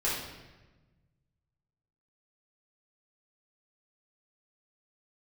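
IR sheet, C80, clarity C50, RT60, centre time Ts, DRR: 4.5 dB, 1.0 dB, 1.2 s, 64 ms, −8.0 dB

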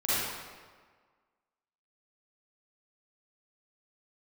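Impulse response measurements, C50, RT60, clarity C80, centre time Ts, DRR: −7.5 dB, 1.6 s, −2.0 dB, 134 ms, −12.0 dB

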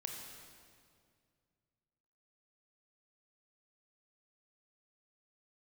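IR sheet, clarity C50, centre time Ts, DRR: 2.5 dB, 73 ms, 1.5 dB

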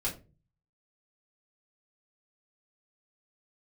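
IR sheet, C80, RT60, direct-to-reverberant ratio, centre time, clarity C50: 17.5 dB, 0.30 s, −6.5 dB, 18 ms, 12.0 dB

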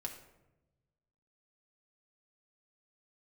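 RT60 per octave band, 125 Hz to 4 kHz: 1.9, 1.3, 1.1, 0.85, 0.75, 0.50 seconds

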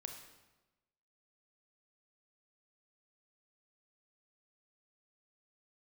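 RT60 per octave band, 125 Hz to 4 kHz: 1.2, 1.2, 1.1, 1.1, 0.95, 0.90 seconds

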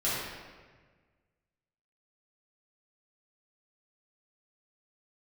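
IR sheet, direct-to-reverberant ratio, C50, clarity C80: −10.5 dB, −2.5 dB, 0.5 dB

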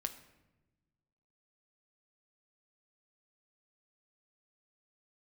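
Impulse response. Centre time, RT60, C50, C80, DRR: 9 ms, 1.1 s, 12.5 dB, 14.5 dB, 6.5 dB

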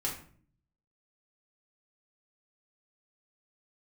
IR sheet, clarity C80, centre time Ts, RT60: 11.5 dB, 27 ms, 0.50 s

